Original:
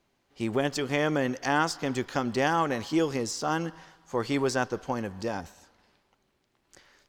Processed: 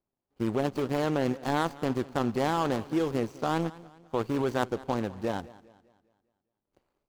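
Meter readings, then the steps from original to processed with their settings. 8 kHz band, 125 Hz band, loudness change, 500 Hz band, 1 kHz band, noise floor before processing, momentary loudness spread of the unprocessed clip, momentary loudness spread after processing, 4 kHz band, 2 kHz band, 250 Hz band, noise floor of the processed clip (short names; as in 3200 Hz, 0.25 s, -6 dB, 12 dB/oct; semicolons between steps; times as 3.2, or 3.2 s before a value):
-9.5 dB, +1.0 dB, -1.0 dB, -0.5 dB, -1.5 dB, -73 dBFS, 8 LU, 6 LU, -4.5 dB, -6.5 dB, 0.0 dB, under -85 dBFS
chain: median filter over 25 samples; in parallel at -3 dB: negative-ratio compressor -30 dBFS, ratio -0.5; on the sum: power-law curve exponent 1.4; warbling echo 0.201 s, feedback 43%, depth 82 cents, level -20 dB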